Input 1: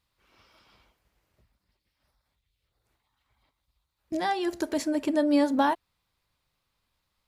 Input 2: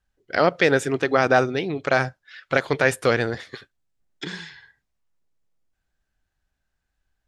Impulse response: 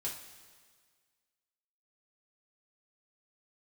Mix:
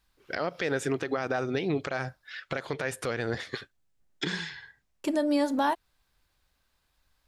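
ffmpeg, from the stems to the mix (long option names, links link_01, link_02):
-filter_complex "[0:a]bass=frequency=250:gain=-6,treble=frequency=4000:gain=3,volume=1dB,asplit=3[link_01][link_02][link_03];[link_01]atrim=end=2.43,asetpts=PTS-STARTPTS,afade=type=out:start_time=2.426:duration=0.004:curve=hsin[link_04];[link_02]atrim=start=2.43:end=5.04,asetpts=PTS-STARTPTS,volume=0[link_05];[link_03]atrim=start=5.04,asetpts=PTS-STARTPTS,afade=type=in:duration=0.004:curve=hsin[link_06];[link_04][link_05][link_06]concat=n=3:v=0:a=1[link_07];[1:a]acompressor=threshold=-22dB:ratio=5,volume=2dB[link_08];[link_07][link_08]amix=inputs=2:normalize=0,alimiter=limit=-17.5dB:level=0:latency=1:release=149"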